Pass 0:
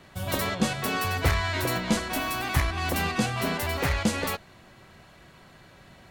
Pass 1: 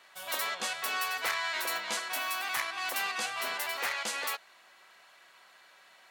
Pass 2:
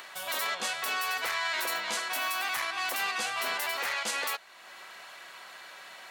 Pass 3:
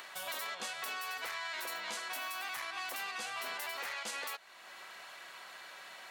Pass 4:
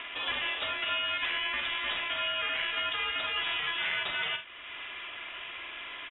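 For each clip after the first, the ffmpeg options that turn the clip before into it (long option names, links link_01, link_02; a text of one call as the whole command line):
ffmpeg -i in.wav -af "highpass=910,volume=-2dB" out.wav
ffmpeg -i in.wav -filter_complex "[0:a]asplit=2[link_01][link_02];[link_02]acompressor=mode=upward:threshold=-35dB:ratio=2.5,volume=0dB[link_03];[link_01][link_03]amix=inputs=2:normalize=0,alimiter=limit=-19.5dB:level=0:latency=1:release=12,volume=-2.5dB" out.wav
ffmpeg -i in.wav -af "acompressor=threshold=-34dB:ratio=6,volume=-3dB" out.wav
ffmpeg -i in.wav -af "aecho=1:1:45|79:0.376|0.158,lowpass=frequency=3400:width_type=q:width=0.5098,lowpass=frequency=3400:width_type=q:width=0.6013,lowpass=frequency=3400:width_type=q:width=0.9,lowpass=frequency=3400:width_type=q:width=2.563,afreqshift=-4000,volume=9dB" out.wav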